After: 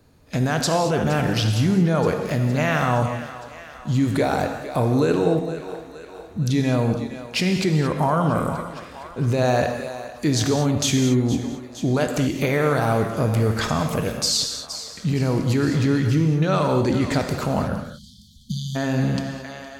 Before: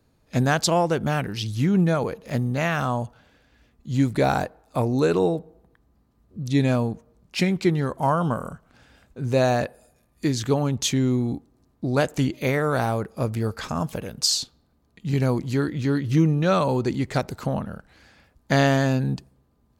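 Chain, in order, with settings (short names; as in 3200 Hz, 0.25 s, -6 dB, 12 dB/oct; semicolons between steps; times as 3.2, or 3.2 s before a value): thinning echo 0.463 s, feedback 63%, high-pass 390 Hz, level -19 dB; in parallel at -2 dB: negative-ratio compressor -28 dBFS, ratio -1; on the sum: limiter -12 dBFS, peak gain reduction 6.5 dB; spectral delete 17.75–18.76, 240–3000 Hz; non-linear reverb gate 0.25 s flat, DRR 4.5 dB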